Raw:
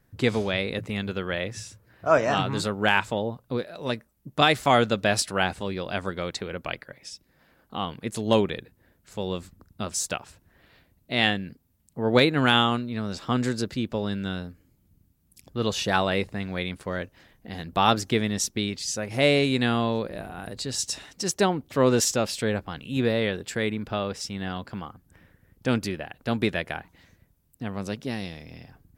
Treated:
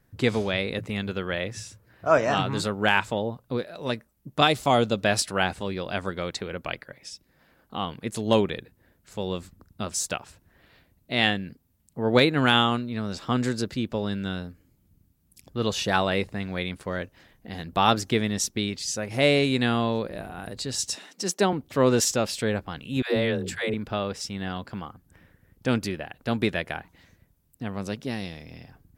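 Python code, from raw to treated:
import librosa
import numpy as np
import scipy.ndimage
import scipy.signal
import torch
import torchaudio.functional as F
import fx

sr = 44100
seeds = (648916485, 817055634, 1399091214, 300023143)

y = fx.peak_eq(x, sr, hz=1700.0, db=-9.0, octaves=0.88, at=(4.47, 5.0))
y = fx.ellip_highpass(y, sr, hz=180.0, order=4, stop_db=40, at=(20.95, 21.53))
y = fx.dispersion(y, sr, late='lows', ms=149.0, hz=380.0, at=(23.02, 23.74))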